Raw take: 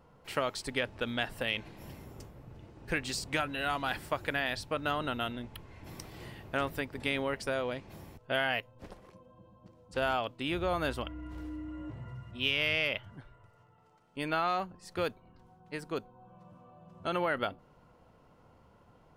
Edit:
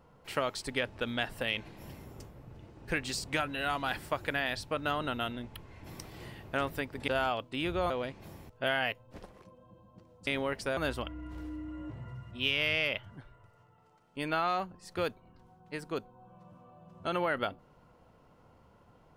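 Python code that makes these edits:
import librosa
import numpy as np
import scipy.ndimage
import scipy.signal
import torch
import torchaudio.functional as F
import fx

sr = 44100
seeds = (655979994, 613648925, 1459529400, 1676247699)

y = fx.edit(x, sr, fx.swap(start_s=7.08, length_s=0.5, other_s=9.95, other_length_s=0.82), tone=tone)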